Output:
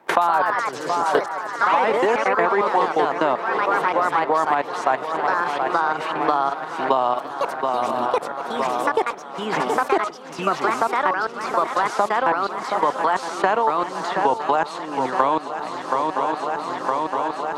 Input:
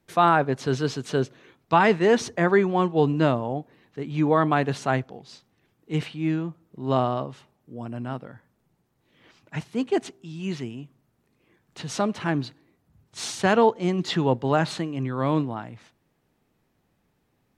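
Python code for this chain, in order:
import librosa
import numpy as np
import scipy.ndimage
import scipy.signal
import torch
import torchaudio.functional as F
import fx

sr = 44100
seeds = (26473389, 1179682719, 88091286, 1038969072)

p1 = scipy.signal.sosfilt(scipy.signal.butter(2, 360.0, 'highpass', fs=sr, output='sos'), x)
p2 = fx.peak_eq(p1, sr, hz=930.0, db=11.5, octaves=0.95)
p3 = fx.level_steps(p2, sr, step_db=22)
p4 = fx.echo_pitch(p3, sr, ms=131, semitones=2, count=3, db_per_echo=-3.0)
p5 = p4 + fx.echo_swing(p4, sr, ms=965, ratio=3, feedback_pct=50, wet_db=-13, dry=0)
p6 = fx.band_squash(p5, sr, depth_pct=100)
y = p6 * librosa.db_to_amplitude(4.5)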